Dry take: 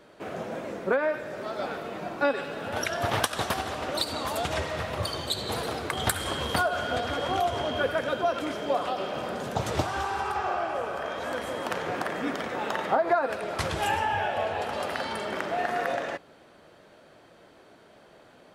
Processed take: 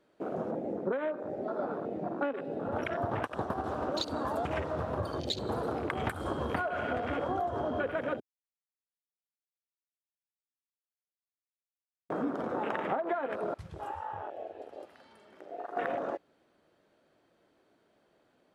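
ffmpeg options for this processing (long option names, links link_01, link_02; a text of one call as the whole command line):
ffmpeg -i in.wav -filter_complex "[0:a]asettb=1/sr,asplit=3[link_01][link_02][link_03];[link_01]atrim=end=0.514[link_04];[link_02]atrim=start=0.51:end=3.64,asetpts=PTS-STARTPTS,afade=type=in:duration=0.004:curve=qsin,afade=type=out:start_time=3.126:duration=0.004:curve=qsin,highshelf=frequency=2200:gain=-7.5[link_05];[link_03]atrim=start=3.636[link_06];[link_04][link_05]acrossfade=duration=0.004:curve1=hsin:curve2=qsin[link_07];[link_07][link_06]acrossfade=duration=0.004:curve1=qsin:curve2=hsin,asplit=5[link_08][link_09][link_10][link_11][link_12];[link_08]atrim=end=8.2,asetpts=PTS-STARTPTS,afade=type=out:start_time=8.196:duration=0.004:curve=hsin[link_13];[link_09]atrim=start=8.2:end=12.1,asetpts=PTS-STARTPTS,volume=0[link_14];[link_10]atrim=start=12.1:end=13.542,asetpts=PTS-STARTPTS,afade=type=in:duration=0.004:curve=hsin[link_15];[link_11]atrim=start=13.538:end=15.772,asetpts=PTS-STARTPTS,volume=-10.5dB[link_16];[link_12]atrim=start=15.768[link_17];[link_13][link_14][link_15]concat=n=3:v=0:a=1[link_18];[link_18][link_16]acrossfade=duration=0.004:curve1=hsin:curve2=hsin[link_19];[link_19][link_17]acrossfade=duration=0.004:curve1=hsin:curve2=hsin,afwtdn=0.0251,equalizer=frequency=300:width=1.4:gain=4.5,acompressor=threshold=-29dB:ratio=6" out.wav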